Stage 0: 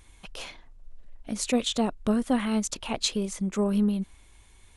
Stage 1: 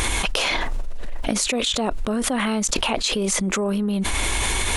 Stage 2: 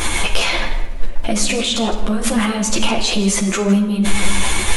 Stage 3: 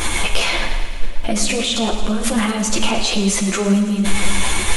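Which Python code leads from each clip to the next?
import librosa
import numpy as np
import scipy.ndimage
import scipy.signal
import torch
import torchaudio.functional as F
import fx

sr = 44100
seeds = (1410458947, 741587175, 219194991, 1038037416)

y1 = fx.bass_treble(x, sr, bass_db=-8, treble_db=-2)
y1 = fx.env_flatten(y1, sr, amount_pct=100)
y2 = y1 + 10.0 ** (-14.5 / 20.0) * np.pad(y1, (int(160 * sr / 1000.0), 0))[:len(y1)]
y2 = fx.room_shoebox(y2, sr, seeds[0], volume_m3=610.0, walls='mixed', distance_m=0.79)
y2 = fx.ensemble(y2, sr)
y2 = F.gain(torch.from_numpy(y2), 5.5).numpy()
y3 = fx.echo_thinned(y2, sr, ms=110, feedback_pct=72, hz=420.0, wet_db=-12.5)
y3 = F.gain(torch.from_numpy(y3), -1.0).numpy()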